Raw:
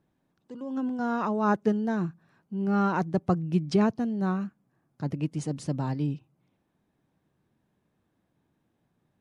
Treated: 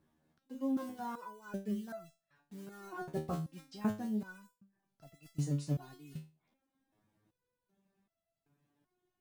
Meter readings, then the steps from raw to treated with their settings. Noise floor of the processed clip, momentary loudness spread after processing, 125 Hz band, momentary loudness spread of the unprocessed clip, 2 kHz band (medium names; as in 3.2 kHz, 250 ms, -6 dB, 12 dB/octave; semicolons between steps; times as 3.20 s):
under -85 dBFS, 15 LU, -9.5 dB, 11 LU, -13.0 dB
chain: block-companded coder 5-bit; reverse; compression 6:1, threshold -31 dBFS, peak gain reduction 13 dB; reverse; reverb removal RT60 0.59 s; resonator arpeggio 2.6 Hz 78–670 Hz; trim +8.5 dB